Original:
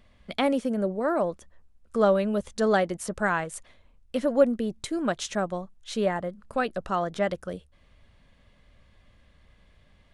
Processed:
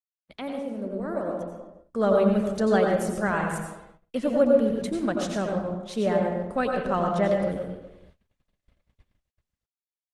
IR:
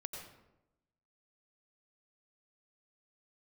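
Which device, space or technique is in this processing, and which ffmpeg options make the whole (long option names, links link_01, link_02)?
speakerphone in a meeting room: -filter_complex "[0:a]adynamicequalizer=threshold=0.0126:dfrequency=220:dqfactor=0.79:tfrequency=220:tqfactor=0.79:attack=5:release=100:ratio=0.375:range=2:mode=boostabove:tftype=bell[link_01];[1:a]atrim=start_sample=2205[link_02];[link_01][link_02]afir=irnorm=-1:irlink=0,asplit=2[link_03][link_04];[link_04]adelay=250,highpass=300,lowpass=3400,asoftclip=type=hard:threshold=-20dB,volume=-17dB[link_05];[link_03][link_05]amix=inputs=2:normalize=0,dynaudnorm=framelen=280:gausssize=11:maxgain=14.5dB,agate=range=-49dB:threshold=-42dB:ratio=16:detection=peak,volume=-8dB" -ar 48000 -c:a libopus -b:a 20k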